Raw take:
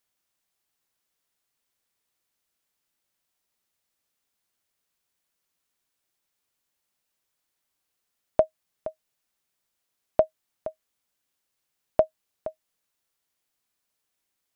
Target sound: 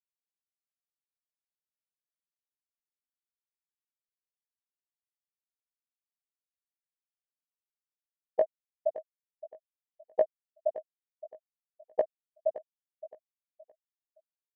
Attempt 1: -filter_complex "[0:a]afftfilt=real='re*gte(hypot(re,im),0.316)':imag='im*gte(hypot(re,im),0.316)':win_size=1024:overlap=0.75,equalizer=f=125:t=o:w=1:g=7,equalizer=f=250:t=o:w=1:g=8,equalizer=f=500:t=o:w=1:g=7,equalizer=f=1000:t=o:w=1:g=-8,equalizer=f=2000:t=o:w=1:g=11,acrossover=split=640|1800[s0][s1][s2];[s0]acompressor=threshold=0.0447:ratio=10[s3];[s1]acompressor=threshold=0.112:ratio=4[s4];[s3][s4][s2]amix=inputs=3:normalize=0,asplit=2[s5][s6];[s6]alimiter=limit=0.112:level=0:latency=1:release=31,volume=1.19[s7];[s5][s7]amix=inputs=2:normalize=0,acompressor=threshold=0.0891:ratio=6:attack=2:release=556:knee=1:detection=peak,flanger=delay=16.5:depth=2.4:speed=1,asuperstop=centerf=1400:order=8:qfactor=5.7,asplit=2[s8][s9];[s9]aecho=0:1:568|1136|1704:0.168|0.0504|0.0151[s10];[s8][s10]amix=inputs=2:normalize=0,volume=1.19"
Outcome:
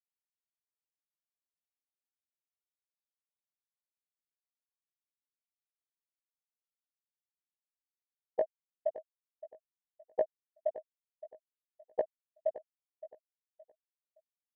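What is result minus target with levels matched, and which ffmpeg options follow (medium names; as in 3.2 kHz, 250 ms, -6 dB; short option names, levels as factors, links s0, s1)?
compression: peak gain reduction +5.5 dB
-filter_complex "[0:a]afftfilt=real='re*gte(hypot(re,im),0.316)':imag='im*gte(hypot(re,im),0.316)':win_size=1024:overlap=0.75,equalizer=f=125:t=o:w=1:g=7,equalizer=f=250:t=o:w=1:g=8,equalizer=f=500:t=o:w=1:g=7,equalizer=f=1000:t=o:w=1:g=-8,equalizer=f=2000:t=o:w=1:g=11,acrossover=split=640|1800[s0][s1][s2];[s0]acompressor=threshold=0.0447:ratio=10[s3];[s1]acompressor=threshold=0.112:ratio=4[s4];[s3][s4][s2]amix=inputs=3:normalize=0,asplit=2[s5][s6];[s6]alimiter=limit=0.112:level=0:latency=1:release=31,volume=1.19[s7];[s5][s7]amix=inputs=2:normalize=0,acompressor=threshold=0.188:ratio=6:attack=2:release=556:knee=1:detection=peak,flanger=delay=16.5:depth=2.4:speed=1,asuperstop=centerf=1400:order=8:qfactor=5.7,asplit=2[s8][s9];[s9]aecho=0:1:568|1136|1704:0.168|0.0504|0.0151[s10];[s8][s10]amix=inputs=2:normalize=0,volume=1.19"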